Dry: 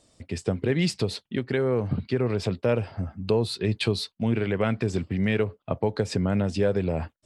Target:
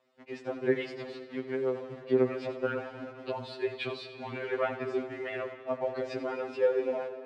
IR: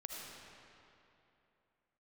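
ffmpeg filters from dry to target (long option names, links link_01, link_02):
-filter_complex "[0:a]asettb=1/sr,asplit=3[link_01][link_02][link_03];[link_01]atrim=end=0.844[link_04];[link_02]atrim=start=0.84:end=2.04,asetpts=PTS-STARTPTS,afade=type=in:duration=0.004:curve=qsin,afade=type=out:start_time=1.196:duration=0.004:curve=qsin,acompressor=threshold=-30dB:ratio=3[link_05];[link_03]atrim=start=2.036[link_06];[link_04][link_05]acrossfade=duration=0.004:curve1=hsin:curve2=qsin[link_07];[link_07][link_06]acrossfade=duration=0.004:curve1=qsin:curve2=hsin,acrusher=bits=8:dc=4:mix=0:aa=0.000001,highpass=340,lowpass=2300,asplit=2[link_08][link_09];[1:a]atrim=start_sample=2205,adelay=88[link_10];[link_09][link_10]afir=irnorm=-1:irlink=0,volume=-7.5dB[link_11];[link_08][link_11]amix=inputs=2:normalize=0,afftfilt=real='re*2.45*eq(mod(b,6),0)':imag='im*2.45*eq(mod(b,6),0)':win_size=2048:overlap=0.75"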